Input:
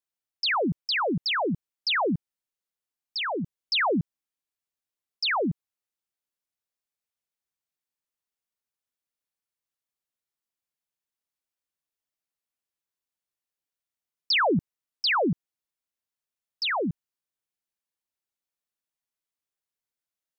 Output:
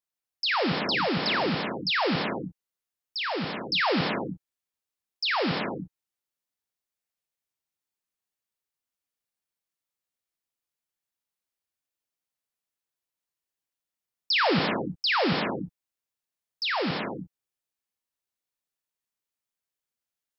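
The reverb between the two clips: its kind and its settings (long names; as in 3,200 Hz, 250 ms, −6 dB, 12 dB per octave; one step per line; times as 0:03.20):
reverb whose tail is shaped and stops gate 370 ms flat, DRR 2 dB
level −1.5 dB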